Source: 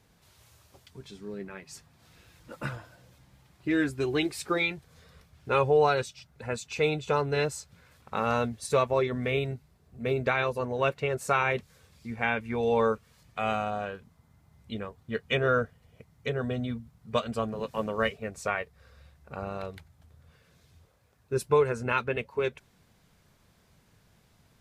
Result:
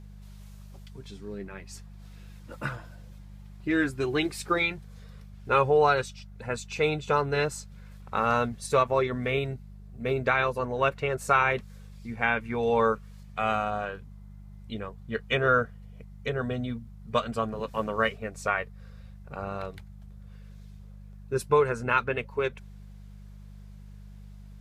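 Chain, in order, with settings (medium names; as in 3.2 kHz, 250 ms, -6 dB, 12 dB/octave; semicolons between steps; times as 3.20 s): dynamic bell 1.3 kHz, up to +5 dB, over -42 dBFS, Q 1.4; mains buzz 50 Hz, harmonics 4, -46 dBFS -5 dB/octave; endings held to a fixed fall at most 540 dB/s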